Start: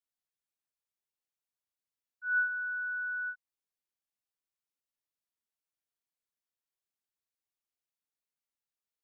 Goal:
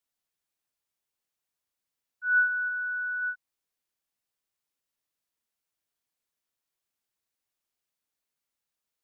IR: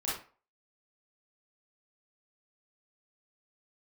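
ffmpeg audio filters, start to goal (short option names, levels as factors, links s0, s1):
-filter_complex "[0:a]asplit=3[s0][s1][s2];[s0]afade=t=out:st=2.68:d=0.02[s3];[s1]bandpass=f=1400:t=q:w=7.4:csg=0,afade=t=in:st=2.68:d=0.02,afade=t=out:st=3.21:d=0.02[s4];[s2]afade=t=in:st=3.21:d=0.02[s5];[s3][s4][s5]amix=inputs=3:normalize=0,volume=2"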